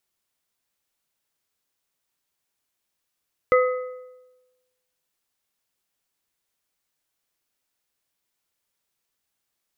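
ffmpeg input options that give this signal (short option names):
-f lavfi -i "aevalsrc='0.224*pow(10,-3*t/1.12)*sin(2*PI*505*t)+0.126*pow(10,-3*t/0.851)*sin(2*PI*1262.5*t)+0.0708*pow(10,-3*t/0.739)*sin(2*PI*2020*t)':d=1.55:s=44100"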